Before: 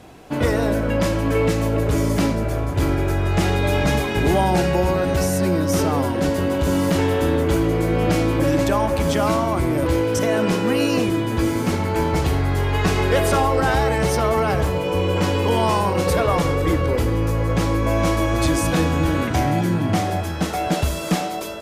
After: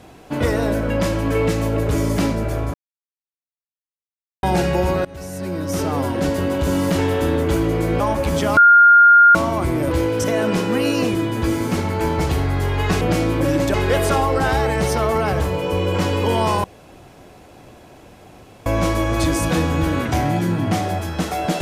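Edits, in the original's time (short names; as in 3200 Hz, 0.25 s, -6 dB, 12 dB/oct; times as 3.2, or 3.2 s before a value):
2.74–4.43 mute
5.05–6.13 fade in linear, from -21.5 dB
8–8.73 move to 12.96
9.3 add tone 1410 Hz -6 dBFS 0.78 s
15.86–17.88 room tone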